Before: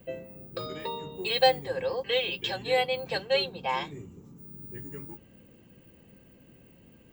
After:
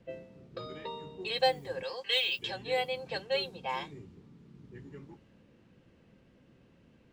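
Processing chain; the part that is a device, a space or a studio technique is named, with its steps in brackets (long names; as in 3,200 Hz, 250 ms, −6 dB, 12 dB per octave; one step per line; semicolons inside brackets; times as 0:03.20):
0:01.83–0:02.39: spectral tilt +4.5 dB per octave
cassette deck with a dynamic noise filter (white noise bed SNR 31 dB; low-pass that shuts in the quiet parts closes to 2,600 Hz, open at −23 dBFS)
level −5.5 dB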